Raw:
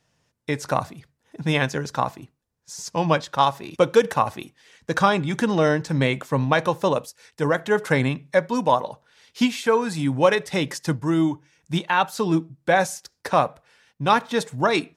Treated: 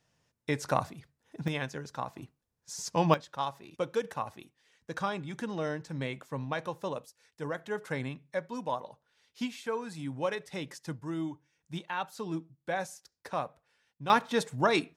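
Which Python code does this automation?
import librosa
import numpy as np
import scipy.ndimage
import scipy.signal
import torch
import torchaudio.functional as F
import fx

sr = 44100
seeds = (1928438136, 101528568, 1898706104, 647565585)

y = fx.gain(x, sr, db=fx.steps((0.0, -5.5), (1.48, -13.0), (2.16, -4.0), (3.14, -14.5), (14.1, -5.5)))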